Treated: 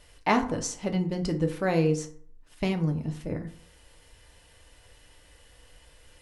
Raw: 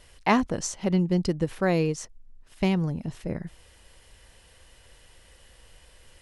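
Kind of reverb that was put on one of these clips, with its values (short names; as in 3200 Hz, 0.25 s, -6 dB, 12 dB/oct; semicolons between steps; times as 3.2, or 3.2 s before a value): FDN reverb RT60 0.52 s, low-frequency decay 1×, high-frequency decay 0.55×, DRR 4 dB; gain -2.5 dB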